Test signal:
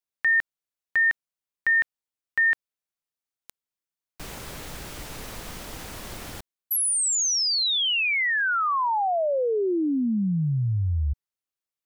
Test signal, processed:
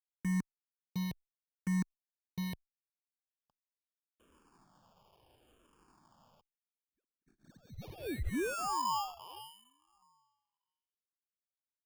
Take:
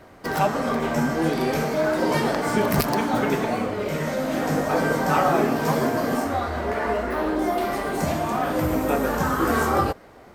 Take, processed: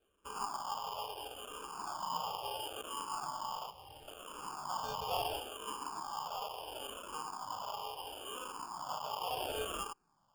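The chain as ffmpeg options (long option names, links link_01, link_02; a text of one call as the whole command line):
ffmpeg -i in.wav -filter_complex "[0:a]afwtdn=0.0562,asuperpass=centerf=1400:order=20:qfactor=0.92,acrusher=samples=22:mix=1:aa=0.000001,acompressor=threshold=-40dB:ratio=1.5:attack=0.11:release=42:knee=1,asplit=2[link_01][link_02];[link_02]afreqshift=-0.73[link_03];[link_01][link_03]amix=inputs=2:normalize=1,volume=-1.5dB" out.wav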